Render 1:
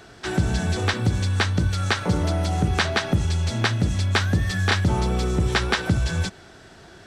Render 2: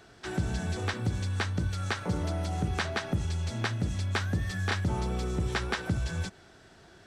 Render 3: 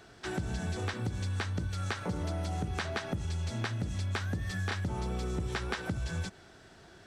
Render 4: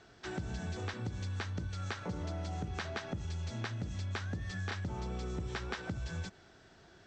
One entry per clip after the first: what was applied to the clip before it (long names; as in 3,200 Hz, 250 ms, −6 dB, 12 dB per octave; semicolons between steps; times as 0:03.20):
dynamic equaliser 3,800 Hz, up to −3 dB, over −36 dBFS, Q 1.1; level −8.5 dB
downward compressor, threshold −30 dBFS, peak gain reduction 7.5 dB
Butterworth low-pass 7,600 Hz 48 dB per octave; level −4.5 dB